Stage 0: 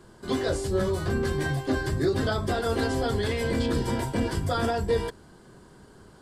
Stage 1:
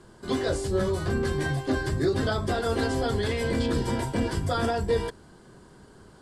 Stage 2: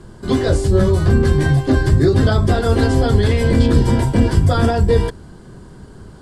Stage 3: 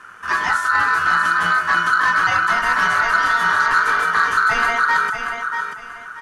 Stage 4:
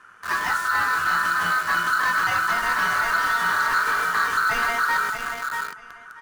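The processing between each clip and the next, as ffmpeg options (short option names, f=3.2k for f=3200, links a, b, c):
-af "lowpass=f=12k:w=0.5412,lowpass=f=12k:w=1.3066"
-af "lowshelf=f=220:g=11.5,volume=6.5dB"
-af "aeval=exprs='val(0)*sin(2*PI*1400*n/s)':c=same,aecho=1:1:636|1272|1908:0.398|0.107|0.029,acontrast=61,volume=-6dB"
-filter_complex "[0:a]asplit=2[a][b];[b]acrusher=bits=3:mix=0:aa=0.000001,volume=-3.5dB[c];[a][c]amix=inputs=2:normalize=0,asoftclip=type=tanh:threshold=-4dB,volume=-8.5dB"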